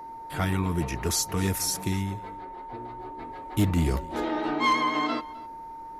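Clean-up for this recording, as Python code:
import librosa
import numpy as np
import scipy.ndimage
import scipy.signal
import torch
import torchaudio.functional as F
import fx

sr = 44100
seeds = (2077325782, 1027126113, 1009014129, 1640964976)

y = fx.fix_declip(x, sr, threshold_db=-16.5)
y = fx.notch(y, sr, hz=910.0, q=30.0)
y = fx.fix_echo_inverse(y, sr, delay_ms=259, level_db=-21.0)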